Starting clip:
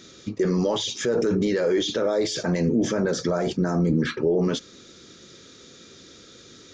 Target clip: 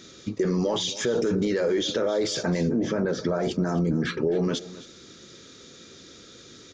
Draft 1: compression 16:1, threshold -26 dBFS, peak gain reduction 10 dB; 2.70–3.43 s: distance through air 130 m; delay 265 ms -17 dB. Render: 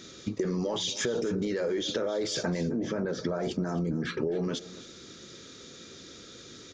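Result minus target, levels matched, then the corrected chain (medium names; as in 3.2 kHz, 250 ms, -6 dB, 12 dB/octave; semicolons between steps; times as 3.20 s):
compression: peak gain reduction +6 dB
compression 16:1, threshold -19.5 dBFS, peak gain reduction 4 dB; 2.70–3.43 s: distance through air 130 m; delay 265 ms -17 dB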